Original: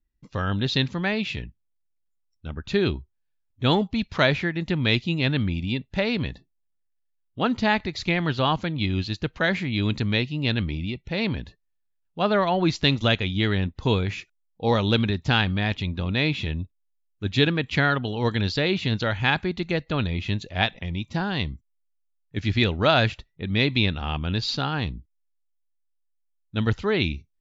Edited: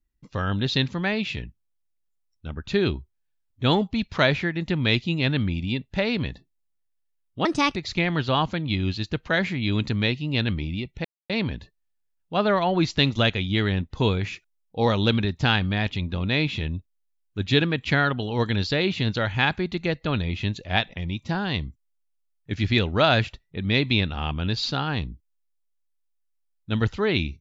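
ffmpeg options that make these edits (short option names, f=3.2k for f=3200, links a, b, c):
-filter_complex "[0:a]asplit=4[a][b][c][d];[a]atrim=end=7.454[e];[b]atrim=start=7.45:end=7.86,asetpts=PTS-STARTPTS,asetrate=59094,aresample=44100,atrim=end_sample=13493,asetpts=PTS-STARTPTS[f];[c]atrim=start=7.856:end=11.15,asetpts=PTS-STARTPTS,afade=t=out:st=3.29:d=0.004:c=hsin,apad=pad_dur=0.25[g];[d]atrim=start=11.15,asetpts=PTS-STARTPTS,afade=t=in:d=0.004:c=hsin[h];[e][f]acrossfade=d=0.004:c1=hsin:c2=hsin[i];[g][h]concat=n=2:v=0:a=1[j];[i][j]acrossfade=d=0.004:c1=hsin:c2=hsin"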